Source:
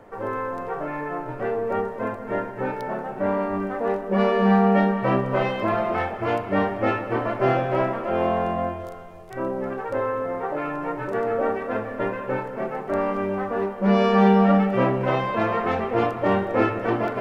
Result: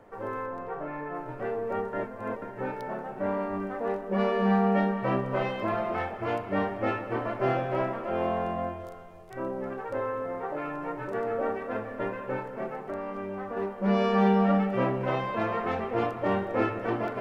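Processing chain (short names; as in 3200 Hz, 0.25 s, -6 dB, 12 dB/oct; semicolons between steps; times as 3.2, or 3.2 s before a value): 0.46–1.15 high shelf 4200 Hz -9.5 dB; 1.93–2.42 reverse; 12.73–13.57 compressor 4:1, threshold -26 dBFS, peak gain reduction 6 dB; gain -6 dB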